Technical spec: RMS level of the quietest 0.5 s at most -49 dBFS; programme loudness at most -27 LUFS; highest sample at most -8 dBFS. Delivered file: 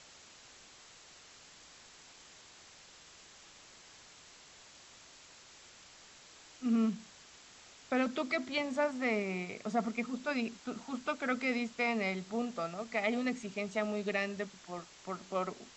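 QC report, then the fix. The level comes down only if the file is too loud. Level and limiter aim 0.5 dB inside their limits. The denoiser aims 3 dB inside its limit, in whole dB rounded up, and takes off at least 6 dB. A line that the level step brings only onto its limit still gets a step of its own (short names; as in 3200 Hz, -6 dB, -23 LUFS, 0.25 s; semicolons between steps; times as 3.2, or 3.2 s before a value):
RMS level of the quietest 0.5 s -57 dBFS: OK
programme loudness -35.5 LUFS: OK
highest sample -19.0 dBFS: OK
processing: none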